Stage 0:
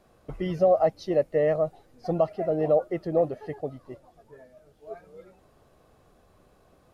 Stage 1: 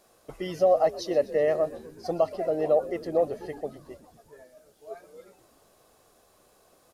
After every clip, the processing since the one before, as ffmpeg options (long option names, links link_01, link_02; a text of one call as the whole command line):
ffmpeg -i in.wav -filter_complex "[0:a]bass=frequency=250:gain=-11,treble=frequency=4000:gain=11,asplit=7[link_01][link_02][link_03][link_04][link_05][link_06][link_07];[link_02]adelay=124,afreqshift=-73,volume=-18dB[link_08];[link_03]adelay=248,afreqshift=-146,volume=-21.9dB[link_09];[link_04]adelay=372,afreqshift=-219,volume=-25.8dB[link_10];[link_05]adelay=496,afreqshift=-292,volume=-29.6dB[link_11];[link_06]adelay=620,afreqshift=-365,volume=-33.5dB[link_12];[link_07]adelay=744,afreqshift=-438,volume=-37.4dB[link_13];[link_01][link_08][link_09][link_10][link_11][link_12][link_13]amix=inputs=7:normalize=0" out.wav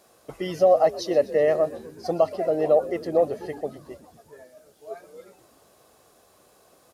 ffmpeg -i in.wav -af "highpass=61,volume=3.5dB" out.wav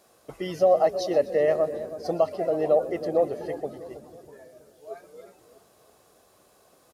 ffmpeg -i in.wav -filter_complex "[0:a]asplit=2[link_01][link_02];[link_02]adelay=323,lowpass=frequency=820:poles=1,volume=-11.5dB,asplit=2[link_03][link_04];[link_04]adelay=323,lowpass=frequency=820:poles=1,volume=0.51,asplit=2[link_05][link_06];[link_06]adelay=323,lowpass=frequency=820:poles=1,volume=0.51,asplit=2[link_07][link_08];[link_08]adelay=323,lowpass=frequency=820:poles=1,volume=0.51,asplit=2[link_09][link_10];[link_10]adelay=323,lowpass=frequency=820:poles=1,volume=0.51[link_11];[link_01][link_03][link_05][link_07][link_09][link_11]amix=inputs=6:normalize=0,volume=-2dB" out.wav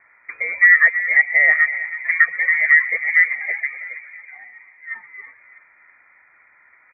ffmpeg -i in.wav -af "lowpass=frequency=2100:width_type=q:width=0.5098,lowpass=frequency=2100:width_type=q:width=0.6013,lowpass=frequency=2100:width_type=q:width=0.9,lowpass=frequency=2100:width_type=q:width=2.563,afreqshift=-2500,volume=7.5dB" out.wav